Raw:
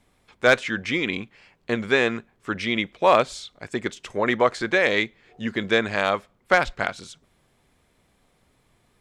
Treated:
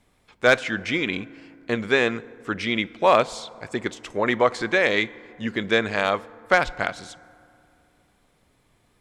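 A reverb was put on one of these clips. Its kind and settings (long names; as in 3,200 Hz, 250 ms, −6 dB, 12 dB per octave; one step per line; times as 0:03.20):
feedback delay network reverb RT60 2.6 s, low-frequency decay 1.2×, high-frequency decay 0.4×, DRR 19 dB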